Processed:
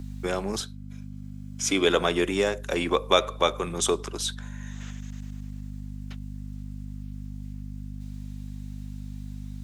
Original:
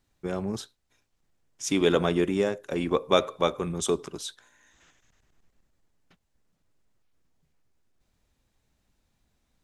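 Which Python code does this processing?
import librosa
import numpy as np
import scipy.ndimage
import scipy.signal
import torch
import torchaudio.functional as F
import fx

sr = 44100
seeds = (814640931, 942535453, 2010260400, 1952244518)

y = fx.highpass(x, sr, hz=600.0, slope=6)
y = fx.add_hum(y, sr, base_hz=50, snr_db=10)
y = fx.notch_comb(y, sr, f0_hz=920.0, at=(0.6, 1.87))
y = fx.band_squash(y, sr, depth_pct=40)
y = y * 10.0 ** (7.0 / 20.0)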